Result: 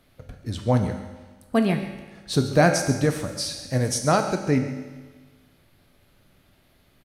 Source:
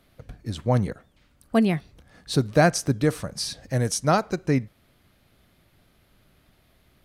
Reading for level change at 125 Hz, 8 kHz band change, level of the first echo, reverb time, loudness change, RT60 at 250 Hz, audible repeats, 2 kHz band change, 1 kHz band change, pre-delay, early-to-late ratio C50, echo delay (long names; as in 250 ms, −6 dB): +0.5 dB, +1.5 dB, −14.5 dB, 1.4 s, +1.0 dB, 1.4 s, 1, +1.5 dB, +1.0 dB, 4 ms, 7.0 dB, 137 ms